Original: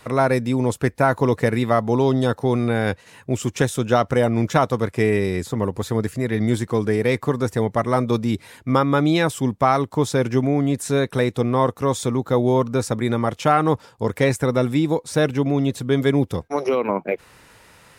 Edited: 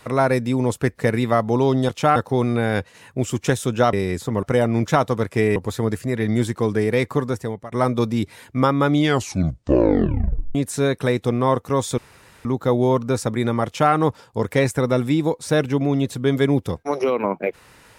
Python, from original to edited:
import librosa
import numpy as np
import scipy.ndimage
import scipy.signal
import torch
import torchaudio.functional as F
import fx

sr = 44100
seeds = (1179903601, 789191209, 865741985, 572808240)

y = fx.edit(x, sr, fx.cut(start_s=0.98, length_s=0.39),
    fx.move(start_s=5.18, length_s=0.5, to_s=4.05),
    fx.fade_out_to(start_s=7.32, length_s=0.52, floor_db=-22.5),
    fx.tape_stop(start_s=9.01, length_s=1.66),
    fx.insert_room_tone(at_s=12.1, length_s=0.47),
    fx.duplicate(start_s=13.31, length_s=0.27, to_s=2.28), tone=tone)